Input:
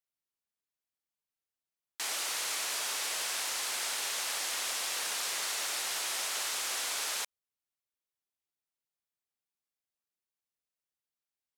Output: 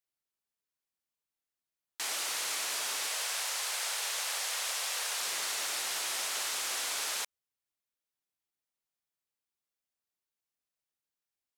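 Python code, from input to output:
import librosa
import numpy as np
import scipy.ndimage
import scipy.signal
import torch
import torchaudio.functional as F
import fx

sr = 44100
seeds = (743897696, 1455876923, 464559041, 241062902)

y = fx.steep_highpass(x, sr, hz=430.0, slope=36, at=(3.07, 5.21))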